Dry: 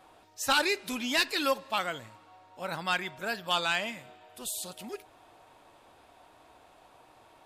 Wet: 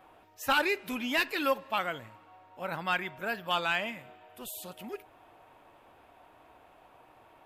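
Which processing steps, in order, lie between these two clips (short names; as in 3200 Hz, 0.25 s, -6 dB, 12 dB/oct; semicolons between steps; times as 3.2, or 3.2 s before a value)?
band shelf 6100 Hz -9.5 dB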